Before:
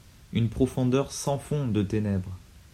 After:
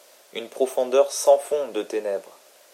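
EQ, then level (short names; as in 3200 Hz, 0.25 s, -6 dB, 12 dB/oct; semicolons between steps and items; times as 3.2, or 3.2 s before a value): HPF 400 Hz 24 dB/oct; bell 590 Hz +14 dB 0.73 oct; high shelf 6200 Hz +7.5 dB; +2.5 dB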